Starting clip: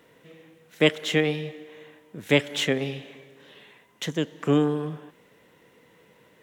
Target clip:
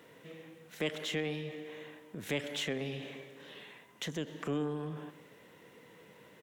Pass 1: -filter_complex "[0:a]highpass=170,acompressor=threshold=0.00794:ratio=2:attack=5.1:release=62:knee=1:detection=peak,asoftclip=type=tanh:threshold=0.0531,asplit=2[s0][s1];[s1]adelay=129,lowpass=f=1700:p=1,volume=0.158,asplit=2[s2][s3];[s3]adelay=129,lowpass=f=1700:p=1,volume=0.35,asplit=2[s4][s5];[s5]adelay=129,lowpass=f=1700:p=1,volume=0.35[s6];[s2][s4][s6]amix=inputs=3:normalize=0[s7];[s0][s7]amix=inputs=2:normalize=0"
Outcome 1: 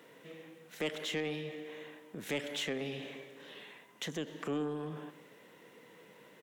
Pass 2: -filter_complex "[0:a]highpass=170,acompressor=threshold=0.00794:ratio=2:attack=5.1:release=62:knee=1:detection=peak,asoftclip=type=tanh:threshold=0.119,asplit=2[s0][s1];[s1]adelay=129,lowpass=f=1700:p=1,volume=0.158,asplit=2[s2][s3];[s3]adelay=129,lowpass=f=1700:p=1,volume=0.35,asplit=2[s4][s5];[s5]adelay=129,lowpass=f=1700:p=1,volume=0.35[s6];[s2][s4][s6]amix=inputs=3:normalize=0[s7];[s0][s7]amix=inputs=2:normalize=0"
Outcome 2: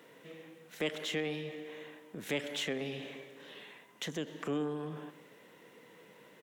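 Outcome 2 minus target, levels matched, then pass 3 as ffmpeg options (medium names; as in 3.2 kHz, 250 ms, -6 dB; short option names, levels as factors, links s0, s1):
125 Hz band -3.5 dB
-filter_complex "[0:a]highpass=75,acompressor=threshold=0.00794:ratio=2:attack=5.1:release=62:knee=1:detection=peak,asoftclip=type=tanh:threshold=0.119,asplit=2[s0][s1];[s1]adelay=129,lowpass=f=1700:p=1,volume=0.158,asplit=2[s2][s3];[s3]adelay=129,lowpass=f=1700:p=1,volume=0.35,asplit=2[s4][s5];[s5]adelay=129,lowpass=f=1700:p=1,volume=0.35[s6];[s2][s4][s6]amix=inputs=3:normalize=0[s7];[s0][s7]amix=inputs=2:normalize=0"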